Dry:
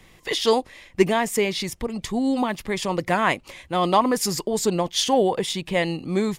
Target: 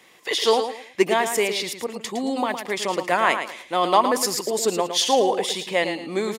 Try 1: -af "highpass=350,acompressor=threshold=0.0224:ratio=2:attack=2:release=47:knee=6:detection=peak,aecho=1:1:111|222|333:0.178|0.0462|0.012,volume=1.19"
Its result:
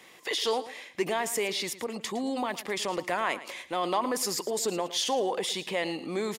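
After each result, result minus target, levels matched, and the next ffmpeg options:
compression: peak gain reduction +11.5 dB; echo-to-direct -6.5 dB
-af "highpass=350,aecho=1:1:111|222|333:0.178|0.0462|0.012,volume=1.19"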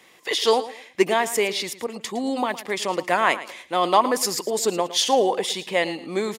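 echo-to-direct -6.5 dB
-af "highpass=350,aecho=1:1:111|222|333:0.376|0.0977|0.0254,volume=1.19"

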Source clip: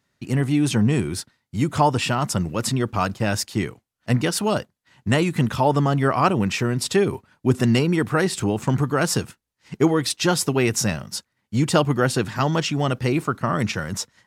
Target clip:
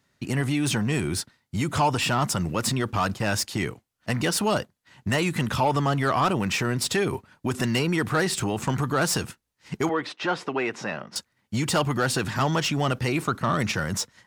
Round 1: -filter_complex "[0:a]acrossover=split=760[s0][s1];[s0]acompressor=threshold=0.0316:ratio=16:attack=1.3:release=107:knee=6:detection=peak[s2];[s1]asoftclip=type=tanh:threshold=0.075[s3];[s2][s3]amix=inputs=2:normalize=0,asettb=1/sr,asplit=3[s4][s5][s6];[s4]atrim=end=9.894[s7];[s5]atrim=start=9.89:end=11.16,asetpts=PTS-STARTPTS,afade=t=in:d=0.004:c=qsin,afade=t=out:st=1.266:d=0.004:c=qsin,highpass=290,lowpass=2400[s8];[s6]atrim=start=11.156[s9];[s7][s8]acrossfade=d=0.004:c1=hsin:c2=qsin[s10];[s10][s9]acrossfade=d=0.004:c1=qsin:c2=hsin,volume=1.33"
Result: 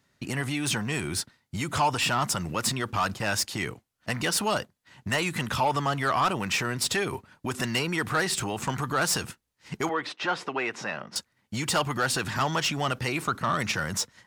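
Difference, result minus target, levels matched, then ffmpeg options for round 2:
compression: peak gain reduction +6.5 dB
-filter_complex "[0:a]acrossover=split=760[s0][s1];[s0]acompressor=threshold=0.0708:ratio=16:attack=1.3:release=107:knee=6:detection=peak[s2];[s1]asoftclip=type=tanh:threshold=0.075[s3];[s2][s3]amix=inputs=2:normalize=0,asettb=1/sr,asplit=3[s4][s5][s6];[s4]atrim=end=9.894[s7];[s5]atrim=start=9.89:end=11.16,asetpts=PTS-STARTPTS,afade=t=in:d=0.004:c=qsin,afade=t=out:st=1.266:d=0.004:c=qsin,highpass=290,lowpass=2400[s8];[s6]atrim=start=11.156[s9];[s7][s8]acrossfade=d=0.004:c1=hsin:c2=qsin[s10];[s10][s9]acrossfade=d=0.004:c1=qsin:c2=hsin,volume=1.33"

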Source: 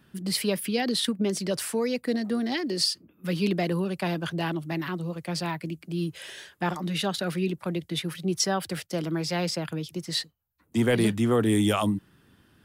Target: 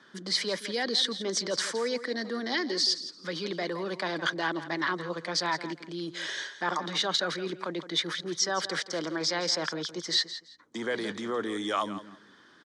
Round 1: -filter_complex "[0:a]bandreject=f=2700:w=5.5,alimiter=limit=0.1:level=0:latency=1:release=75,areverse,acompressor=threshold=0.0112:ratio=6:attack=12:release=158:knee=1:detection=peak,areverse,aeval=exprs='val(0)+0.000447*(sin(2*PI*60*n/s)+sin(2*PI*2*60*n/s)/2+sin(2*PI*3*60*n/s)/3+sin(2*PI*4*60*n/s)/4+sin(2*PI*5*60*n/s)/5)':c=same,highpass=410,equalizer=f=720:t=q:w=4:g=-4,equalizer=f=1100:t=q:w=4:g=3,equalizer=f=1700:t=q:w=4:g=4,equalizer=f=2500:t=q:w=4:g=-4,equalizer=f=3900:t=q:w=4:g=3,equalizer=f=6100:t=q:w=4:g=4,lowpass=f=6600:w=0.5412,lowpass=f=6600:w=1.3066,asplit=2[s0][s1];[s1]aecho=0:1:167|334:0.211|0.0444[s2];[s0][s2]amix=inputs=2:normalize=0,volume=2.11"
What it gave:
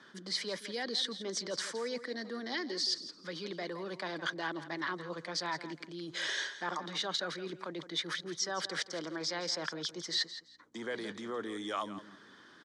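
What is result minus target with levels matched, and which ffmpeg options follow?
compression: peak gain reduction +7 dB
-filter_complex "[0:a]bandreject=f=2700:w=5.5,alimiter=limit=0.1:level=0:latency=1:release=75,areverse,acompressor=threshold=0.0299:ratio=6:attack=12:release=158:knee=1:detection=peak,areverse,aeval=exprs='val(0)+0.000447*(sin(2*PI*60*n/s)+sin(2*PI*2*60*n/s)/2+sin(2*PI*3*60*n/s)/3+sin(2*PI*4*60*n/s)/4+sin(2*PI*5*60*n/s)/5)':c=same,highpass=410,equalizer=f=720:t=q:w=4:g=-4,equalizer=f=1100:t=q:w=4:g=3,equalizer=f=1700:t=q:w=4:g=4,equalizer=f=2500:t=q:w=4:g=-4,equalizer=f=3900:t=q:w=4:g=3,equalizer=f=6100:t=q:w=4:g=4,lowpass=f=6600:w=0.5412,lowpass=f=6600:w=1.3066,asplit=2[s0][s1];[s1]aecho=0:1:167|334:0.211|0.0444[s2];[s0][s2]amix=inputs=2:normalize=0,volume=2.11"

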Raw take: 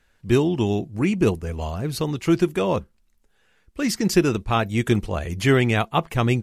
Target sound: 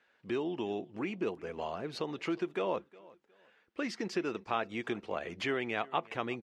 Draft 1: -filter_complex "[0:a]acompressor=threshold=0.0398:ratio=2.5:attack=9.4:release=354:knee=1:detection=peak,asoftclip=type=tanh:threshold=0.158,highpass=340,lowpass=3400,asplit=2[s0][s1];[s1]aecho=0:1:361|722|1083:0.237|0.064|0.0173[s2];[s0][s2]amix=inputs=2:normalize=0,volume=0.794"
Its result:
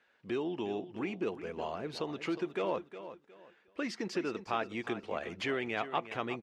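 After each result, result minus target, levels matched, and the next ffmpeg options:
saturation: distortion +22 dB; echo-to-direct +10 dB
-filter_complex "[0:a]acompressor=threshold=0.0398:ratio=2.5:attack=9.4:release=354:knee=1:detection=peak,asoftclip=type=tanh:threshold=0.596,highpass=340,lowpass=3400,asplit=2[s0][s1];[s1]aecho=0:1:361|722|1083:0.237|0.064|0.0173[s2];[s0][s2]amix=inputs=2:normalize=0,volume=0.794"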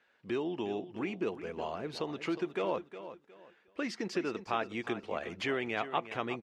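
echo-to-direct +10 dB
-filter_complex "[0:a]acompressor=threshold=0.0398:ratio=2.5:attack=9.4:release=354:knee=1:detection=peak,asoftclip=type=tanh:threshold=0.596,highpass=340,lowpass=3400,asplit=2[s0][s1];[s1]aecho=0:1:361|722:0.075|0.0202[s2];[s0][s2]amix=inputs=2:normalize=0,volume=0.794"

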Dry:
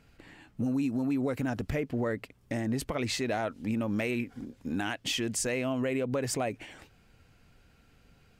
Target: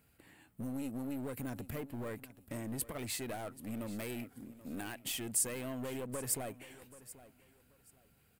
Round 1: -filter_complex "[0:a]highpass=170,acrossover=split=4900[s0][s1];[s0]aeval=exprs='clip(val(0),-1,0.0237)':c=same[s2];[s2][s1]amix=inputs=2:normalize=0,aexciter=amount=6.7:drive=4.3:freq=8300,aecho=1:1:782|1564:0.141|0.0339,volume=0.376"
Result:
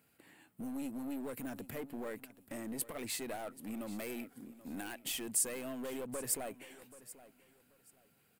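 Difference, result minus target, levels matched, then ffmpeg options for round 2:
125 Hz band -9.0 dB
-filter_complex "[0:a]highpass=54,acrossover=split=4900[s0][s1];[s0]aeval=exprs='clip(val(0),-1,0.0237)':c=same[s2];[s2][s1]amix=inputs=2:normalize=0,aexciter=amount=6.7:drive=4.3:freq=8300,aecho=1:1:782|1564:0.141|0.0339,volume=0.376"

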